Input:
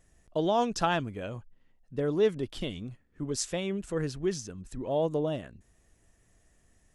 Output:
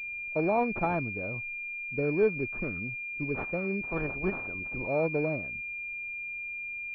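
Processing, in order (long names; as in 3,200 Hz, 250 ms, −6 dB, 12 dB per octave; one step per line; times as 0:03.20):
0:03.80–0:04.86: ceiling on every frequency bin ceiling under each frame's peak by 18 dB
switching amplifier with a slow clock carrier 2,400 Hz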